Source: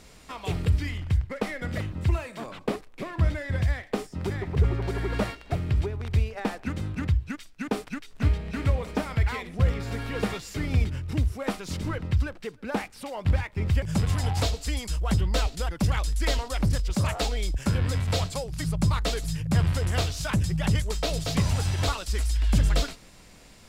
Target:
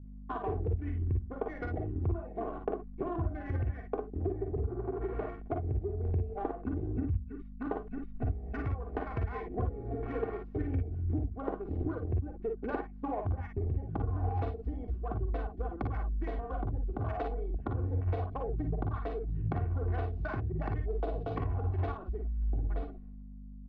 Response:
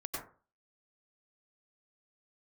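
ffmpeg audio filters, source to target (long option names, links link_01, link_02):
-filter_complex "[0:a]afwtdn=0.0178,asettb=1/sr,asplit=3[link_01][link_02][link_03];[link_01]atrim=end=7.044[link_04];[link_02]atrim=start=7.04:end=9.14,asetpts=PTS-STARTPTS,afade=type=in:duration=0.004:curve=qsin,afade=type=out:start_time=2.096:duration=0.004:curve=qsin,equalizer=frequency=300:width_type=o:width=1.8:gain=-8.5[link_05];[link_03]atrim=start=9.136[link_06];[link_04][link_05]acrossfade=duration=0.004:curve1=hsin:curve2=qsin[link_07];[link_07][link_06]acrossfade=duration=0.004:curve1=qsin:curve2=hsin,agate=range=-33dB:threshold=-44dB:ratio=3:detection=peak,bass=frequency=250:gain=-7,treble=frequency=4000:gain=-14,aecho=1:1:2.7:0.78,acompressor=threshold=-38dB:ratio=16,aeval=exprs='val(0)+0.00224*(sin(2*PI*50*n/s)+sin(2*PI*2*50*n/s)/2+sin(2*PI*3*50*n/s)/3+sin(2*PI*4*50*n/s)/4+sin(2*PI*5*50*n/s)/5)':channel_layout=same,adynamicsmooth=sensitivity=1.5:basefreq=980,aecho=1:1:45|56:0.398|0.473,volume=7.5dB"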